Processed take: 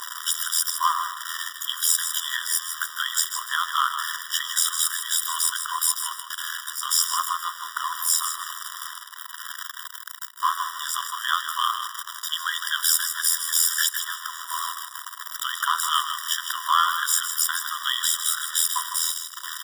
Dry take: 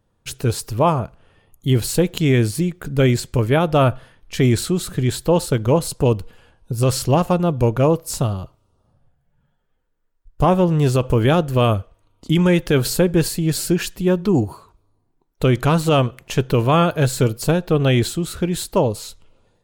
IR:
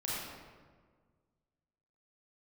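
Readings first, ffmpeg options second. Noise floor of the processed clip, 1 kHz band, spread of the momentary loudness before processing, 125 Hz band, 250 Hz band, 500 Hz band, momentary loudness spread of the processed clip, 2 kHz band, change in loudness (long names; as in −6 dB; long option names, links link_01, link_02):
−40 dBFS, −1.5 dB, 7 LU, below −40 dB, below −40 dB, below −40 dB, 12 LU, +1.5 dB, −5.0 dB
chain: -filter_complex "[0:a]aeval=exprs='val(0)+0.5*0.0794*sgn(val(0))':channel_layout=same,highshelf=frequency=4300:gain=6,tremolo=f=82:d=0.788,asplit=2[link_01][link_02];[link_02]aecho=0:1:156|312|468:0.376|0.0902|0.0216[link_03];[link_01][link_03]amix=inputs=2:normalize=0,afftfilt=real='re*eq(mod(floor(b*sr/1024/970),2),1)':imag='im*eq(mod(floor(b*sr/1024/970),2),1)':win_size=1024:overlap=0.75,volume=3.5dB"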